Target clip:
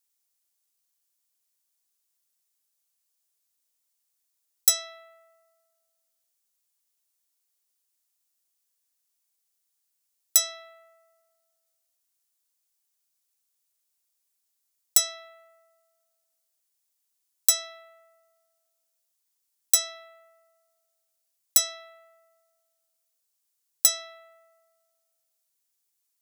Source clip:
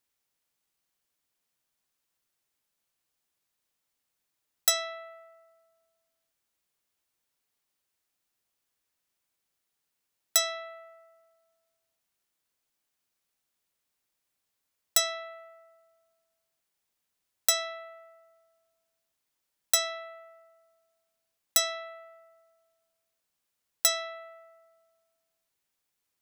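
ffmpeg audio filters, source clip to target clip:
-af "bass=f=250:g=-9,treble=f=4000:g=13,volume=0.447"

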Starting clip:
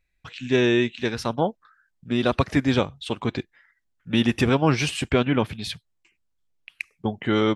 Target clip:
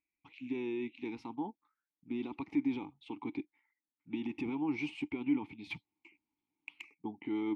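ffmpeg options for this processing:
-filter_complex "[0:a]alimiter=limit=0.15:level=0:latency=1:release=19,asplit=3[s0][s1][s2];[s0]afade=t=out:st=5.7:d=0.02[s3];[s1]aeval=exprs='0.15*sin(PI/2*3.55*val(0)/0.15)':c=same,afade=t=in:st=5.7:d=0.02,afade=t=out:st=6.93:d=0.02[s4];[s2]afade=t=in:st=6.93:d=0.02[s5];[s3][s4][s5]amix=inputs=3:normalize=0,asplit=3[s6][s7][s8];[s6]bandpass=f=300:t=q:w=8,volume=1[s9];[s7]bandpass=f=870:t=q:w=8,volume=0.501[s10];[s8]bandpass=f=2240:t=q:w=8,volume=0.355[s11];[s9][s10][s11]amix=inputs=3:normalize=0"

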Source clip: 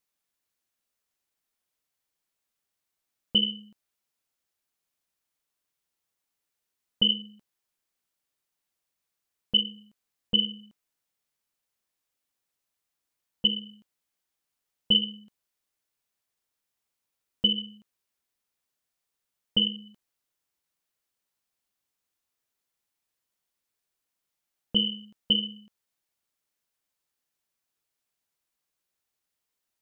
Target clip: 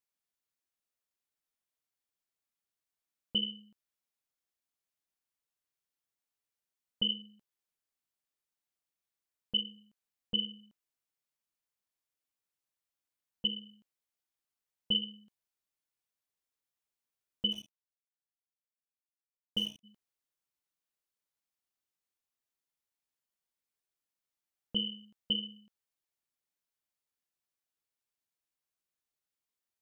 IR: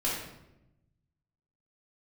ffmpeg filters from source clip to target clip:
-filter_complex "[0:a]asplit=3[s0][s1][s2];[s0]afade=t=out:st=17.51:d=0.02[s3];[s1]aeval=exprs='sgn(val(0))*max(abs(val(0))-0.0119,0)':c=same,afade=t=in:st=17.51:d=0.02,afade=t=out:st=19.83:d=0.02[s4];[s2]afade=t=in:st=19.83:d=0.02[s5];[s3][s4][s5]amix=inputs=3:normalize=0,volume=0.376"

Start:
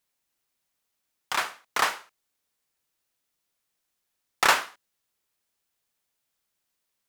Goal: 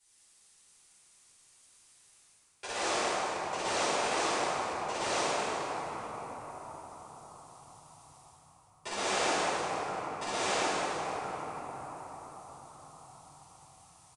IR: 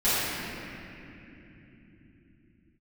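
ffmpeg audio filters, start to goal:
-filter_complex "[0:a]aemphasis=mode=production:type=50kf,aecho=1:1:679:0.447,areverse,acompressor=threshold=0.0178:ratio=12,areverse[s0];[1:a]atrim=start_sample=2205,asetrate=42336,aresample=44100[s1];[s0][s1]afir=irnorm=-1:irlink=0,asetrate=22050,aresample=44100,volume=0.473"

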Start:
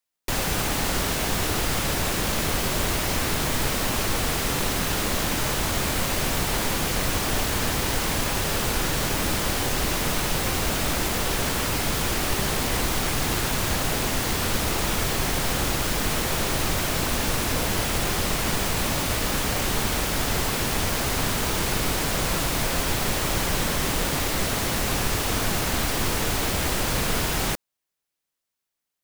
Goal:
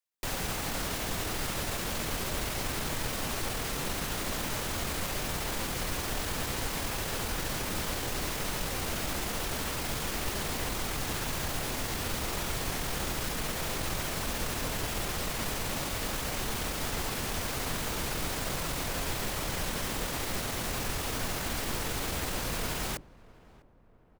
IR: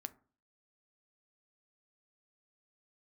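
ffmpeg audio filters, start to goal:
-filter_complex "[0:a]bandreject=f=50:t=h:w=6,bandreject=f=100:t=h:w=6,bandreject=f=150:t=h:w=6,bandreject=f=200:t=h:w=6,bandreject=f=250:t=h:w=6,bandreject=f=300:t=h:w=6,bandreject=f=350:t=h:w=6,bandreject=f=400:t=h:w=6,atempo=1.2,asplit=2[s0][s1];[s1]adelay=651,lowpass=f=1200:p=1,volume=0.0891,asplit=2[s2][s3];[s3]adelay=651,lowpass=f=1200:p=1,volume=0.53,asplit=2[s4][s5];[s5]adelay=651,lowpass=f=1200:p=1,volume=0.53,asplit=2[s6][s7];[s7]adelay=651,lowpass=f=1200:p=1,volume=0.53[s8];[s2][s4][s6][s8]amix=inputs=4:normalize=0[s9];[s0][s9]amix=inputs=2:normalize=0,volume=0.398"

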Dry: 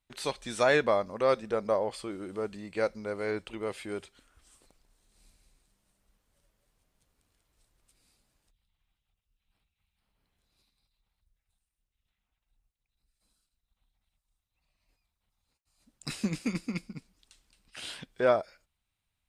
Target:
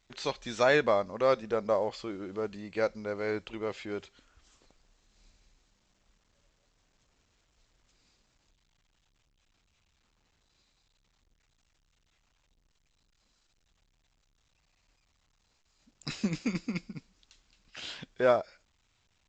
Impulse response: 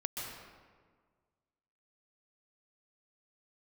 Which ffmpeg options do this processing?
-ar 16000 -c:a pcm_alaw

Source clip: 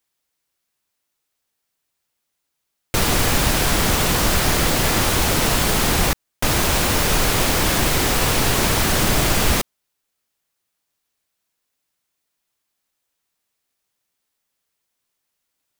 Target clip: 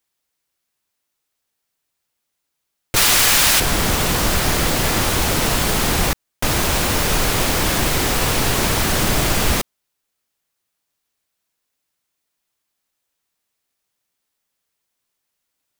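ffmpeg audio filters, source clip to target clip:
-filter_complex "[0:a]asettb=1/sr,asplit=3[s0][s1][s2];[s0]atrim=end=2.964[s3];[s1]atrim=start=2.96:end=3.6,asetpts=PTS-STARTPTS,afade=t=in:d=0.004:c=qsin,afade=t=out:st=0.636:d=0.004:c=qsin,tiltshelf=f=790:g=-8.5[s4];[s2]atrim=start=3.596[s5];[s3][s4]acrossfade=d=0.004:c1=hsin:c2=qsin[s6];[s6][s5]acrossfade=d=0.004:c1=qsin:c2=hsin"

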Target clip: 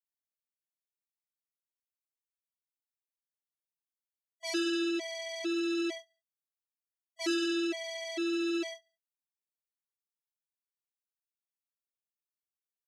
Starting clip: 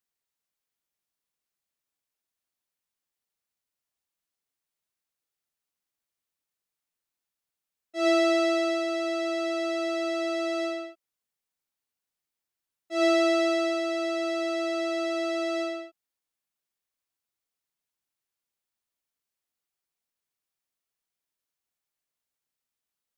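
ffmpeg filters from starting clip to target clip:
-filter_complex "[0:a]acrossover=split=830|4000[s0][s1][s2];[s2]acompressor=threshold=0.00141:ratio=6[s3];[s0][s1][s3]amix=inputs=3:normalize=0,aecho=1:1:253:0.282,asplit=2[s4][s5];[s5]aeval=exprs='0.211*sin(PI/2*3.98*val(0)/0.211)':c=same,volume=0.282[s6];[s4][s6]amix=inputs=2:normalize=0,atempo=1.8,lowshelf=f=550:t=q:w=3:g=12,agate=range=0.0562:threshold=0.282:ratio=16:detection=peak,aderivative,afftfilt=real='re*gt(sin(2*PI*1.1*pts/sr)*(1-2*mod(floor(b*sr/1024/600),2)),0)':imag='im*gt(sin(2*PI*1.1*pts/sr)*(1-2*mod(floor(b*sr/1024/600),2)),0)':win_size=1024:overlap=0.75,volume=1.58"

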